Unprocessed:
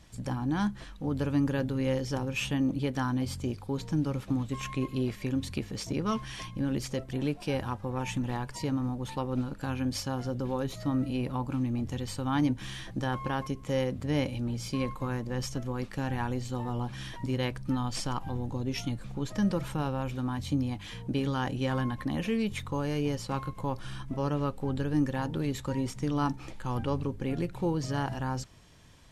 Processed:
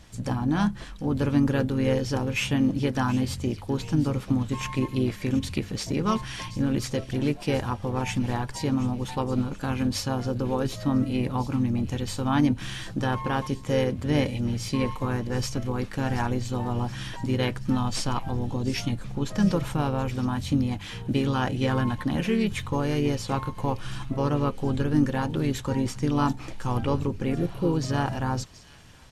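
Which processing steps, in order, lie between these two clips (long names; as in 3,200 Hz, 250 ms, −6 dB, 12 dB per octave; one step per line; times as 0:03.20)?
healed spectral selection 0:27.40–0:27.69, 630–9,500 Hz both
delay with a high-pass on its return 726 ms, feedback 53%, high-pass 2,700 Hz, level −14 dB
pitch-shifted copies added −3 semitones −8 dB
level +4.5 dB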